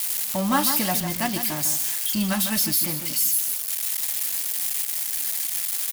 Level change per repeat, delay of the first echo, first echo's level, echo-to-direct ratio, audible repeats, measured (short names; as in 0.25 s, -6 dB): -13.5 dB, 0.151 s, -8.5 dB, -8.5 dB, 2